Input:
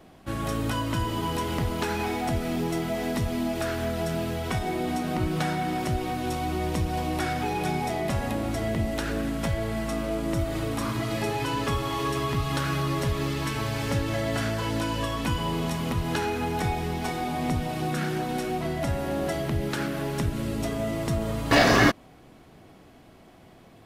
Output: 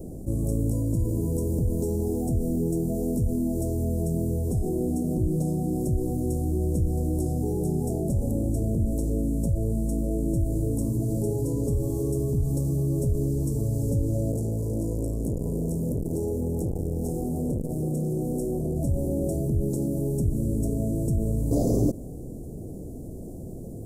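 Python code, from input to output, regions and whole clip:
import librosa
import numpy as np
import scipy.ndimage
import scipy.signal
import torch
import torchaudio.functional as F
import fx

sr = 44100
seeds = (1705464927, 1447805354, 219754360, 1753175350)

y = fx.chain(x, sr, fx.peak_eq(hz=3300.0, db=-11.5, octaves=0.45),
    fx.transformer_sat(knee_hz=670.0), at=(14.32, 18.76))
y = scipy.signal.sosfilt(scipy.signal.cheby1(3, 1.0, [500.0, 7600.0], 'bandstop', fs=sr, output='sos'), y)
y = fx.low_shelf(y, sr, hz=120.0, db=8.0)
y = fx.env_flatten(y, sr, amount_pct=50)
y = F.gain(torch.from_numpy(y), -3.5).numpy()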